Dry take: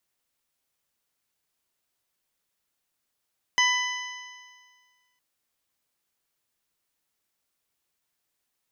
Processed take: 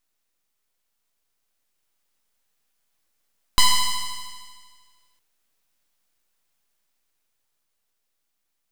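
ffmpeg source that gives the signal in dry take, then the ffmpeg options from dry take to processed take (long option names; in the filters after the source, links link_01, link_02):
-f lavfi -i "aevalsrc='0.0631*pow(10,-3*t/1.7)*sin(2*PI*992.09*t)+0.106*pow(10,-3*t/1.7)*sin(2*PI*1990.7*t)+0.0668*pow(10,-3*t/1.7)*sin(2*PI*3002.29*t)+0.0106*pow(10,-3*t/1.7)*sin(2*PI*4033.16*t)+0.0316*pow(10,-3*t/1.7)*sin(2*PI*5089.44*t)+0.0422*pow(10,-3*t/1.7)*sin(2*PI*6176.98*t)':duration=1.61:sample_rate=44100"
-filter_complex "[0:a]dynaudnorm=framelen=220:gausssize=17:maxgain=4dB,aeval=exprs='abs(val(0))':channel_layout=same,asplit=2[link_01][link_02];[link_02]acrusher=bits=3:mode=log:mix=0:aa=0.000001,volume=-3.5dB[link_03];[link_01][link_03]amix=inputs=2:normalize=0"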